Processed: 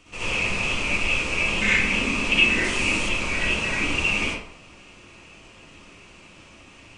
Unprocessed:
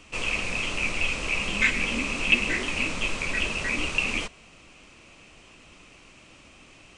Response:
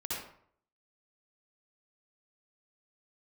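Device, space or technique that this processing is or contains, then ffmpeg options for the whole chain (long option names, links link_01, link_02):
bathroom: -filter_complex "[1:a]atrim=start_sample=2205[link_01];[0:a][link_01]afir=irnorm=-1:irlink=0,asettb=1/sr,asplit=3[link_02][link_03][link_04];[link_02]atrim=end=2.644[link_05];[link_03]atrim=start=2.64:end=3.09,asetpts=PTS-STARTPTS,afade=type=in:duration=0.004:curve=qsin,afade=type=out:start_time=0.446:duration=0.004:curve=qsin,highshelf=frequency=7900:gain=12[link_06];[link_04]atrim=start=3.086[link_07];[link_05][link_06]acrossfade=duration=0.004:curve1=hsin:curve2=qsin[link_08];[link_08][link_07]acrossfade=duration=0.004:curve1=qsin:curve2=hsin,volume=1dB"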